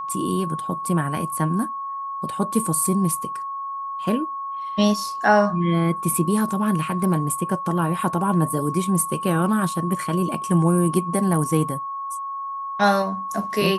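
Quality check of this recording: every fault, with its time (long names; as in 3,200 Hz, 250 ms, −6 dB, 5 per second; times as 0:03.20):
whistle 1,100 Hz −27 dBFS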